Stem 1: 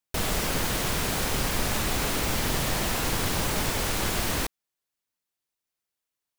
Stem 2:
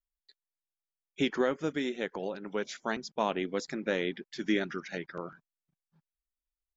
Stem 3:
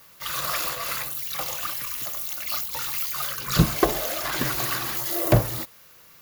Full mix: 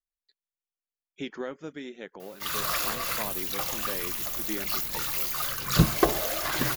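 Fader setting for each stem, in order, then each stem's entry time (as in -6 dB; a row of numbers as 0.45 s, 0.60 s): -19.0 dB, -7.0 dB, -1.5 dB; 2.40 s, 0.00 s, 2.20 s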